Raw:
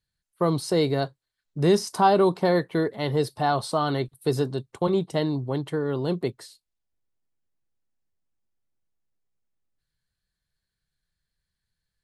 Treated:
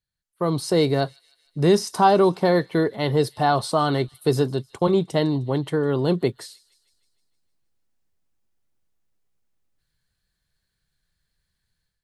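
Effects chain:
automatic gain control gain up to 11.5 dB
on a send: delay with a high-pass on its return 154 ms, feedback 58%, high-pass 3,100 Hz, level −20 dB
on the sum: level −5 dB

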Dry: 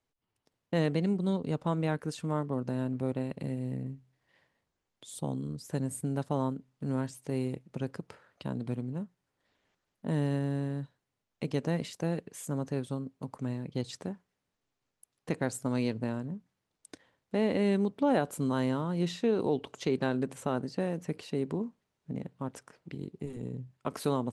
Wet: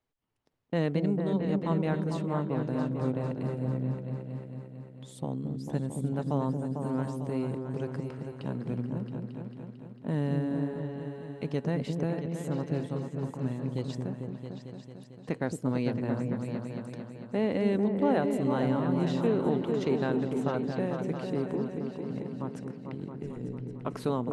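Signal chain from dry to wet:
high-shelf EQ 5,100 Hz −10.5 dB
echo whose low-pass opens from repeat to repeat 224 ms, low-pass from 400 Hz, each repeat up 2 octaves, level −3 dB

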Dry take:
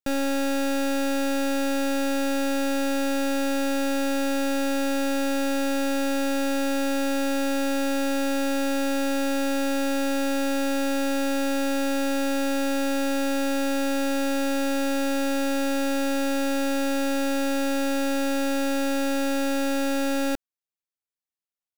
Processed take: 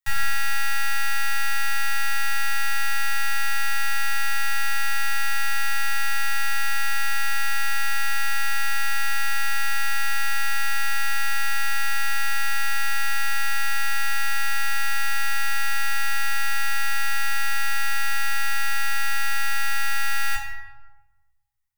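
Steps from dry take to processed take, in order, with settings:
Chebyshev band-stop filter 120–830 Hz, order 5
high-shelf EQ 10,000 Hz +5 dB
hollow resonant body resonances 200/1,900 Hz, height 16 dB, ringing for 35 ms
convolution reverb RT60 1.1 s, pre-delay 5 ms, DRR −2 dB

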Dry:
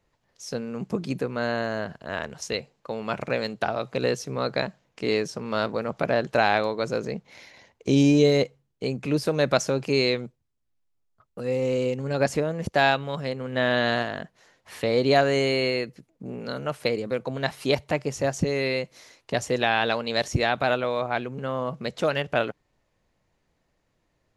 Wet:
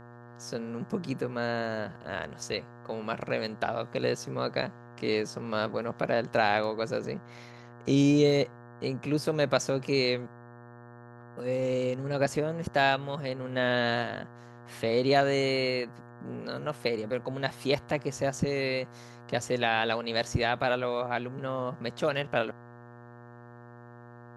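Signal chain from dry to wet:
hum with harmonics 120 Hz, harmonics 15, −45 dBFS −4 dB per octave
level −4 dB

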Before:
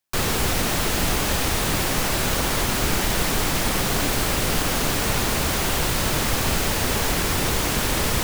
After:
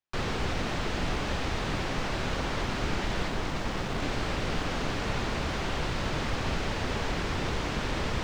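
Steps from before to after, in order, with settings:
0:03.28–0:04.02: phase distortion by the signal itself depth 0.41 ms
high-frequency loss of the air 150 metres
level −6.5 dB

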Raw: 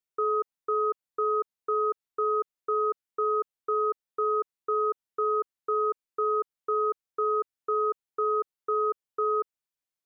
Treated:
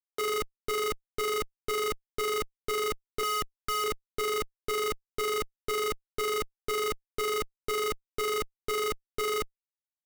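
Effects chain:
0:03.23–0:03.84: resonant band-pass 1,300 Hz, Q 0.5
comparator with hysteresis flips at −39.5 dBFS

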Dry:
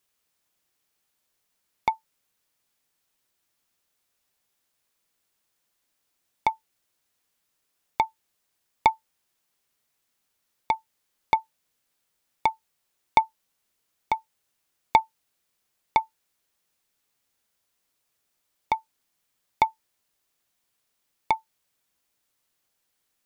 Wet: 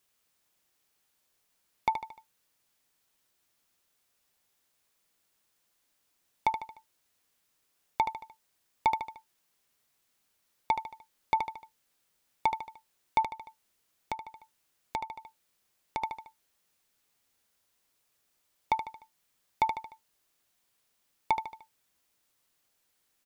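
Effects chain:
repeating echo 75 ms, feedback 45%, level −13 dB
brickwall limiter −14 dBFS, peak gain reduction 10.5 dB
0:13.22–0:16.02: downward compressor 2.5 to 1, threshold −37 dBFS, peak gain reduction 10.5 dB
level +1 dB

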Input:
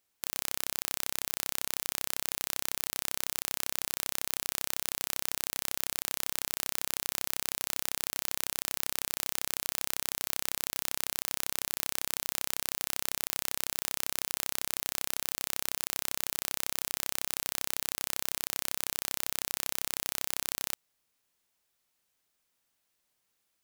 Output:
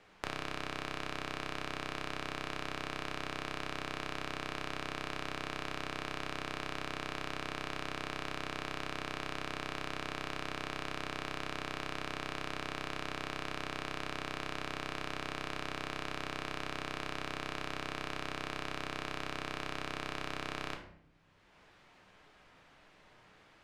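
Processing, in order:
low-pass filter 2,100 Hz 12 dB per octave
rectangular room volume 67 cubic metres, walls mixed, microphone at 0.47 metres
multiband upward and downward compressor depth 70%
level +3 dB

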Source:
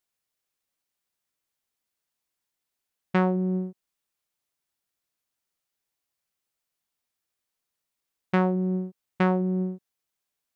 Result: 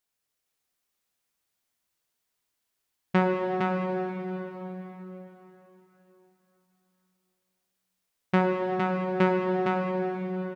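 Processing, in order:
single-tap delay 460 ms −4 dB
dense smooth reverb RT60 4.1 s, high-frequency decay 0.9×, DRR 1 dB

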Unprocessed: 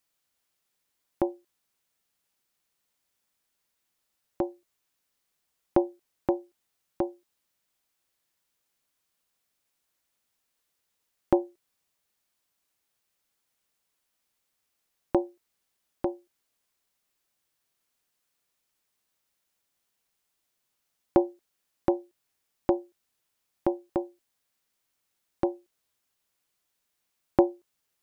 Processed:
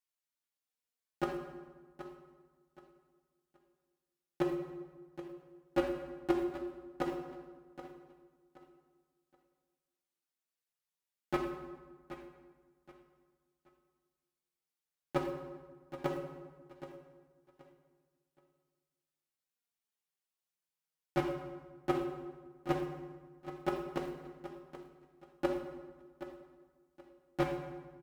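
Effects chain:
low-shelf EQ 380 Hz −4.5 dB
downward compressor 1.5 to 1, threshold −31 dBFS, peak gain reduction 5.5 dB
brickwall limiter −17 dBFS, peak gain reduction 7 dB
leveller curve on the samples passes 5
output level in coarse steps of 10 dB
flanger 0.16 Hz, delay 2.7 ms, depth 5.3 ms, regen +36%
repeating echo 775 ms, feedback 28%, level −13 dB
pitch vibrato 5.5 Hz 21 cents
on a send at −3 dB: convolution reverb RT60 1.4 s, pre-delay 3 ms
on the sum: level −1 dB

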